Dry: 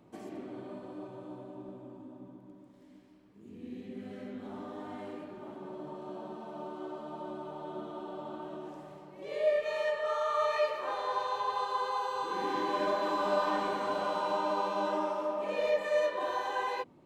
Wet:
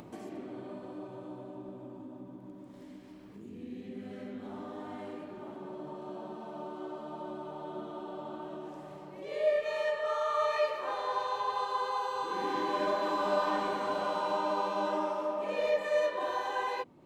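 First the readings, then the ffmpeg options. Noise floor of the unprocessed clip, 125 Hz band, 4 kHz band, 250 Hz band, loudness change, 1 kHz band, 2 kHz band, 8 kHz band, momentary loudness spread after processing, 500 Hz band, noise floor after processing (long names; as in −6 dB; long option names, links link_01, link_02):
−57 dBFS, +0.5 dB, 0.0 dB, +0.5 dB, 0.0 dB, 0.0 dB, 0.0 dB, can't be measured, 16 LU, 0.0 dB, −50 dBFS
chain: -af "acompressor=mode=upward:threshold=-40dB:ratio=2.5"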